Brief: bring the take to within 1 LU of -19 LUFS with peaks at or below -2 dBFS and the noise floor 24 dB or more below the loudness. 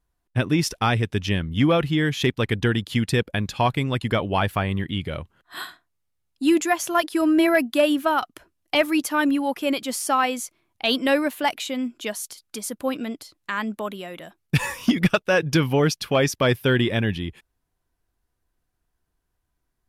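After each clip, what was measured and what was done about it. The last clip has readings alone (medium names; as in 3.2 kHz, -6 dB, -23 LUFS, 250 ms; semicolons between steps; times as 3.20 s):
loudness -23.0 LUFS; peak level -8.5 dBFS; loudness target -19.0 LUFS
-> trim +4 dB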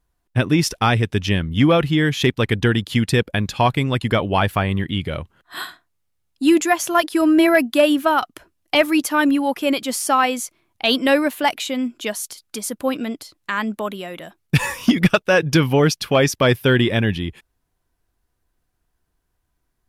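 loudness -19.0 LUFS; peak level -4.5 dBFS; noise floor -72 dBFS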